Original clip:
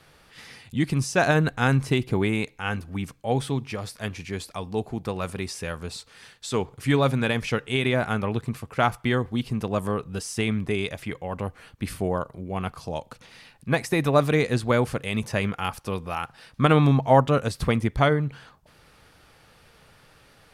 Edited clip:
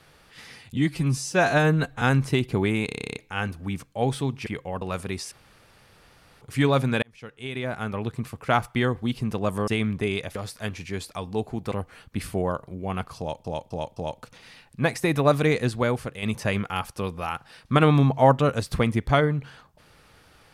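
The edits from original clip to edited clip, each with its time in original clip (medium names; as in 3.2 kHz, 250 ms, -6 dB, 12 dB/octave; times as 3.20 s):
0.77–1.60 s: stretch 1.5×
2.44 s: stutter 0.03 s, 11 plays
3.75–5.11 s: swap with 11.03–11.38 s
5.61–6.71 s: room tone
7.32–8.70 s: fade in
9.97–10.35 s: delete
12.85–13.11 s: loop, 4 plays
14.44–15.11 s: fade out linear, to -6.5 dB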